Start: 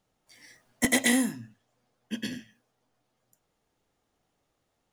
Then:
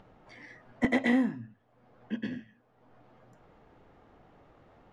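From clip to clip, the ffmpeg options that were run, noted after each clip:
-filter_complex "[0:a]lowpass=1.7k,asplit=2[a][b];[b]acompressor=mode=upward:threshold=-34dB:ratio=2.5,volume=2dB[c];[a][c]amix=inputs=2:normalize=0,volume=-7dB"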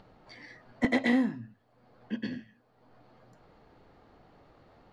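-af "equalizer=f=4.4k:t=o:w=0.3:g=11.5"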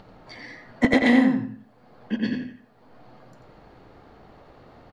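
-filter_complex "[0:a]asplit=2[a][b];[b]adelay=88,lowpass=f=3.2k:p=1,volume=-4dB,asplit=2[c][d];[d]adelay=88,lowpass=f=3.2k:p=1,volume=0.28,asplit=2[e][f];[f]adelay=88,lowpass=f=3.2k:p=1,volume=0.28,asplit=2[g][h];[h]adelay=88,lowpass=f=3.2k:p=1,volume=0.28[i];[a][c][e][g][i]amix=inputs=5:normalize=0,volume=7.5dB"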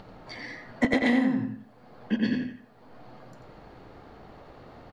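-af "acompressor=threshold=-22dB:ratio=4,volume=1.5dB"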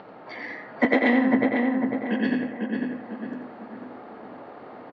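-filter_complex "[0:a]highpass=280,lowpass=2.4k,asplit=2[a][b];[b]adelay=499,lowpass=f=1.9k:p=1,volume=-3dB,asplit=2[c][d];[d]adelay=499,lowpass=f=1.9k:p=1,volume=0.49,asplit=2[e][f];[f]adelay=499,lowpass=f=1.9k:p=1,volume=0.49,asplit=2[g][h];[h]adelay=499,lowpass=f=1.9k:p=1,volume=0.49,asplit=2[i][j];[j]adelay=499,lowpass=f=1.9k:p=1,volume=0.49,asplit=2[k][l];[l]adelay=499,lowpass=f=1.9k:p=1,volume=0.49[m];[a][c][e][g][i][k][m]amix=inputs=7:normalize=0,volume=6dB"

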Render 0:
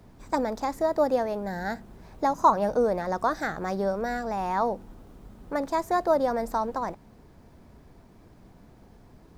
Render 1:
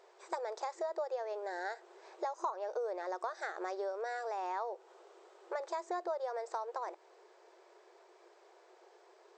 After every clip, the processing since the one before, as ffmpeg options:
-af "afftfilt=real='re*between(b*sr/4096,340,8300)':imag='im*between(b*sr/4096,340,8300)':win_size=4096:overlap=0.75,acompressor=threshold=-35dB:ratio=4,volume=-1.5dB"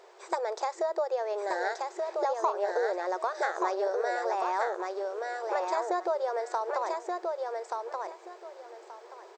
-af "aecho=1:1:1179|2358|3537:0.668|0.147|0.0323,volume=7.5dB"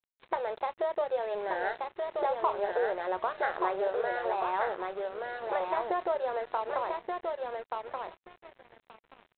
-filter_complex "[0:a]asplit=2[a][b];[b]adelay=27,volume=-12.5dB[c];[a][c]amix=inputs=2:normalize=0,aresample=8000,aeval=exprs='sgn(val(0))*max(abs(val(0))-0.00596,0)':c=same,aresample=44100"

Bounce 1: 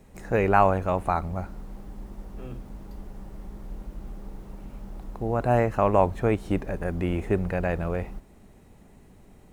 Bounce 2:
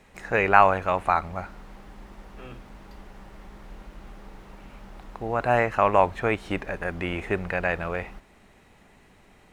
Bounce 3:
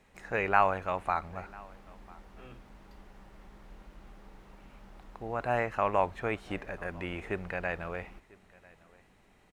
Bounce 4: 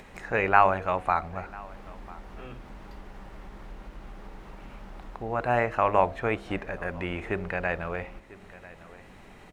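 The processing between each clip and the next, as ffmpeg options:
-af "equalizer=f=2.2k:w=0.33:g=15,volume=-6.5dB"
-af "aecho=1:1:996:0.0631,volume=-8dB"
-filter_complex "[0:a]highshelf=f=4.4k:g=-5.5,bandreject=f=67.41:t=h:w=4,bandreject=f=134.82:t=h:w=4,bandreject=f=202.23:t=h:w=4,bandreject=f=269.64:t=h:w=4,bandreject=f=337.05:t=h:w=4,bandreject=f=404.46:t=h:w=4,bandreject=f=471.87:t=h:w=4,bandreject=f=539.28:t=h:w=4,bandreject=f=606.69:t=h:w=4,bandreject=f=674.1:t=h:w=4,bandreject=f=741.51:t=h:w=4,asplit=2[a][b];[b]acompressor=mode=upward:threshold=-37dB:ratio=2.5,volume=-1dB[c];[a][c]amix=inputs=2:normalize=0"

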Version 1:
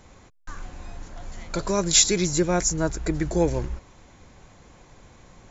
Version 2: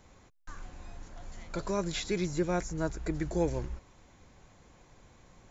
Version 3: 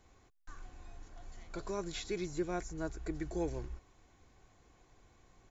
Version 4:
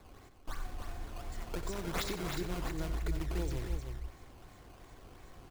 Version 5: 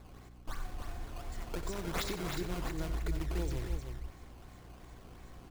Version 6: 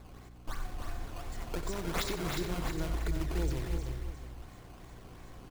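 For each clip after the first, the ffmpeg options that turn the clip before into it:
-filter_complex "[0:a]acrossover=split=3200[a][b];[b]acompressor=threshold=-38dB:ratio=4:attack=1:release=60[c];[a][c]amix=inputs=2:normalize=0,volume=-7.5dB"
-af "aecho=1:1:2.7:0.35,volume=-7dB"
-filter_complex "[0:a]acrossover=split=130|3000[a][b][c];[b]acompressor=threshold=-50dB:ratio=6[d];[a][d][c]amix=inputs=3:normalize=0,acrusher=samples=14:mix=1:aa=0.000001:lfo=1:lforange=22.4:lforate=2.8,asplit=2[e][f];[f]aecho=0:1:90|310:0.282|0.473[g];[e][g]amix=inputs=2:normalize=0,volume=9dB"
-af "aeval=exprs='val(0)+0.002*(sin(2*PI*60*n/s)+sin(2*PI*2*60*n/s)/2+sin(2*PI*3*60*n/s)/3+sin(2*PI*4*60*n/s)/4+sin(2*PI*5*60*n/s)/5)':c=same"
-af "aecho=1:1:357:0.355,volume=2dB"

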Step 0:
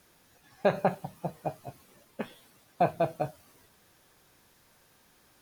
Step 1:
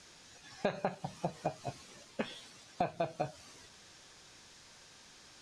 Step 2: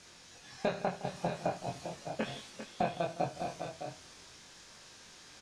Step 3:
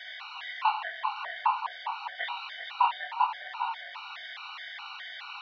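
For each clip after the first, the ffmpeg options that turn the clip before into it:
-af "lowpass=f=7.1k:w=0.5412,lowpass=f=7.1k:w=1.3066,highshelf=f=2.7k:g=12,acompressor=threshold=-33dB:ratio=6,volume=2dB"
-filter_complex "[0:a]asplit=2[a][b];[b]adelay=23,volume=-3.5dB[c];[a][c]amix=inputs=2:normalize=0,asplit=2[d][e];[e]aecho=0:1:75|163|398|609|646:0.168|0.141|0.299|0.355|0.316[f];[d][f]amix=inputs=2:normalize=0"
-af "aeval=exprs='val(0)+0.5*0.0119*sgn(val(0))':c=same,highpass=f=590:t=q:w=0.5412,highpass=f=590:t=q:w=1.307,lowpass=f=3.3k:t=q:w=0.5176,lowpass=f=3.3k:t=q:w=0.7071,lowpass=f=3.3k:t=q:w=1.932,afreqshift=260,afftfilt=real='re*gt(sin(2*PI*2.4*pts/sr)*(1-2*mod(floor(b*sr/1024/750),2)),0)':imag='im*gt(sin(2*PI*2.4*pts/sr)*(1-2*mod(floor(b*sr/1024/750),2)),0)':win_size=1024:overlap=0.75,volume=9dB"

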